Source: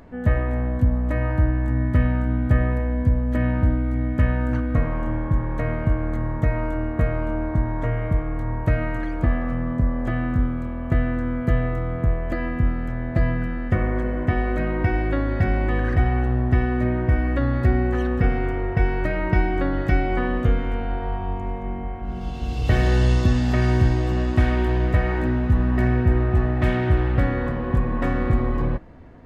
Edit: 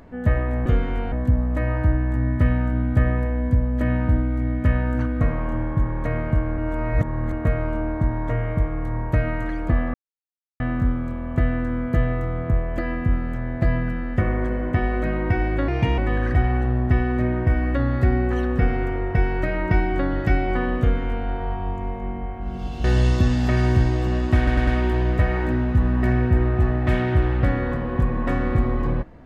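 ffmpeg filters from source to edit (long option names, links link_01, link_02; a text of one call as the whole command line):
ffmpeg -i in.wav -filter_complex "[0:a]asplit=13[link_01][link_02][link_03][link_04][link_05][link_06][link_07][link_08][link_09][link_10][link_11][link_12][link_13];[link_01]atrim=end=0.662[link_14];[link_02]atrim=start=20.418:end=20.882[link_15];[link_03]atrim=start=0.658:end=6.122[link_16];[link_04]atrim=start=6.118:end=6.872,asetpts=PTS-STARTPTS,areverse[link_17];[link_05]atrim=start=6.868:end=9.48,asetpts=PTS-STARTPTS,afade=type=out:start_time=2.608:duration=0.004:curve=hsin[link_18];[link_06]atrim=start=9.48:end=10.14,asetpts=PTS-STARTPTS,volume=0[link_19];[link_07]atrim=start=10.14:end=15.224,asetpts=PTS-STARTPTS,afade=type=in:duration=0.004:curve=hsin[link_20];[link_08]atrim=start=15.22:end=15.6,asetpts=PTS-STARTPTS,asetrate=55566,aresample=44100[link_21];[link_09]atrim=start=15.596:end=22.462[link_22];[link_10]atrim=start=22.888:end=24.522[link_23];[link_11]atrim=start=24.418:end=24.522[link_24];[link_12]atrim=start=24.418:end=24.522[link_25];[link_13]atrim=start=24.418[link_26];[link_14][link_15]acrossfade=duration=0.004:curve1=hsin:curve2=hsin[link_27];[link_27][link_16]acrossfade=duration=0.004:curve1=hsin:curve2=hsin[link_28];[link_28][link_17]acrossfade=duration=0.004:curve1=hsin:curve2=hsin[link_29];[link_18][link_19][link_20]concat=n=3:v=0:a=1[link_30];[link_29][link_30]acrossfade=duration=0.004:curve1=hsin:curve2=hsin[link_31];[link_31][link_21]acrossfade=duration=0.004:curve1=hsin:curve2=hsin[link_32];[link_32][link_22]acrossfade=duration=0.004:curve1=hsin:curve2=hsin[link_33];[link_33][link_23]acrossfade=duration=0.004:curve1=hsin:curve2=hsin[link_34];[link_34][link_24]acrossfade=duration=0.004:curve1=hsin:curve2=hsin[link_35];[link_35][link_25]acrossfade=duration=0.004:curve1=hsin:curve2=hsin[link_36];[link_36][link_26]acrossfade=duration=0.004:curve1=hsin:curve2=hsin" out.wav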